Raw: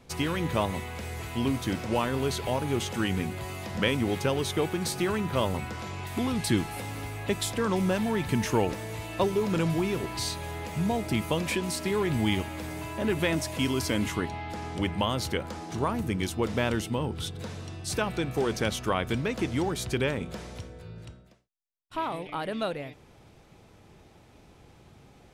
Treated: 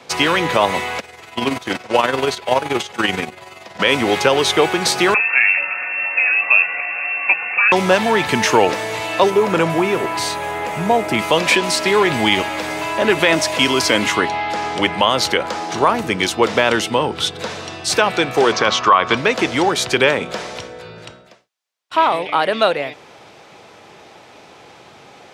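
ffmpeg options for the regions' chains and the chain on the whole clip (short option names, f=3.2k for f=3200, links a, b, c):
-filter_complex "[0:a]asettb=1/sr,asplit=3[a][b][c];[a]atrim=end=1.004[d];[b]atrim=start=1:end=3.8,asetpts=PTS-STARTPTS,afade=t=in:d=0.004:c=qsin,afade=t=out:st=2.796:d=0.004:c=qsin,agate=range=-12dB:threshold=-31dB:ratio=16:release=100:detection=peak,tremolo=f=21:d=0.571[e];[c]atrim=start=3.796[f];[d][e]acrossfade=d=0.004:c1=hsin:c2=qsin[g];[g][f]acrossfade=d=0.004:c1=qsin:c2=hsin,asettb=1/sr,asplit=3[h][i][j];[h]atrim=end=5.144[k];[i]atrim=start=5.14:end=7.72,asetpts=PTS-STARTPTS,afade=t=in:d=0.004:c=qsin,afade=t=out:st=2.576:d=0.004:c=qsin,flanger=delay=4.5:depth=7.2:regen=57:speed=1.7:shape=triangular,lowpass=f=2.4k:t=q:w=0.5098,lowpass=f=2.4k:t=q:w=0.6013,lowpass=f=2.4k:t=q:w=0.9,lowpass=f=2.4k:t=q:w=2.563,afreqshift=-2800[l];[j]atrim=start=7.716[m];[k][l]acrossfade=d=0.004:c1=hsin:c2=qsin[n];[n][m]acrossfade=d=0.004:c1=qsin:c2=hsin,asettb=1/sr,asplit=3[o][p][q];[o]atrim=end=9.304[r];[p]atrim=start=9.3:end=11.19,asetpts=PTS-STARTPTS,afade=t=in:d=0.004:c=qsin,afade=t=out:st=1.886:d=0.004:c=qsin,highpass=47,equalizer=f=4.5k:t=o:w=1.4:g=-9[s];[q]atrim=start=11.186[t];[r][s]acrossfade=d=0.004:c1=hsin:c2=qsin[u];[u][t]acrossfade=d=0.004:c1=qsin:c2=hsin,asettb=1/sr,asplit=3[v][w][x];[v]atrim=end=18.524[y];[w]atrim=start=18.52:end=19.17,asetpts=PTS-STARTPTS,afade=t=in:d=0.004:c=qsin,afade=t=out:st=0.646:d=0.004:c=qsin,lowpass=f=6.4k:w=0.5412,lowpass=f=6.4k:w=1.3066,equalizer=f=1.1k:t=o:w=0.39:g=13[z];[x]atrim=start=19.166[aa];[y][z]acrossfade=d=0.004:c1=hsin:c2=qsin[ab];[ab][aa]acrossfade=d=0.004:c1=qsin:c2=hsin,highpass=130,acrossover=split=430 7100:gain=0.224 1 0.251[ac][ad][ae];[ac][ad][ae]amix=inputs=3:normalize=0,alimiter=level_in=18.5dB:limit=-1dB:release=50:level=0:latency=1,volume=-1dB"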